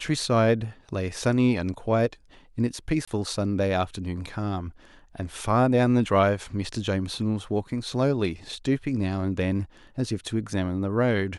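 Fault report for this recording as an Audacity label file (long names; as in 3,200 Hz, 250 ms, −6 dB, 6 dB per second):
3.050000	3.080000	drop-out 25 ms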